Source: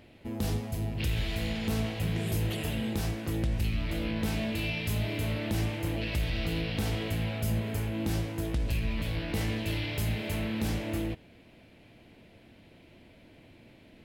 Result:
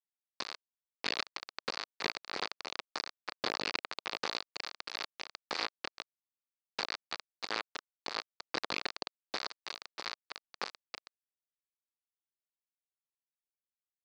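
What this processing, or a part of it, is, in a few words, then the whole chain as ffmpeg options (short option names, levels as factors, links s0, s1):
hand-held game console: -filter_complex "[0:a]asettb=1/sr,asplit=3[s0][s1][s2];[s0]atrim=end=6.044[s3];[s1]atrim=start=6.04:end=6.76,asetpts=PTS-STARTPTS,afade=t=in:d=0.004:c=qsin,afade=t=out:st=0.716:d=0.004:c=qsin,aderivative[s4];[s2]atrim=start=6.756[s5];[s3][s4]acrossfade=d=0.004:c1=hsin:c2=qsin[s6];[s6][s5]acrossfade=d=0.004:c1=qsin:c2=hsin,acrusher=bits=3:mix=0:aa=0.000001,highpass=470,equalizer=f=630:t=q:w=4:g=-4,equalizer=f=1200:t=q:w=4:g=3,equalizer=f=3100:t=q:w=4:g=-6,equalizer=f=4500:t=q:w=4:g=8,lowpass=f=4700:w=0.5412,lowpass=f=4700:w=1.3066"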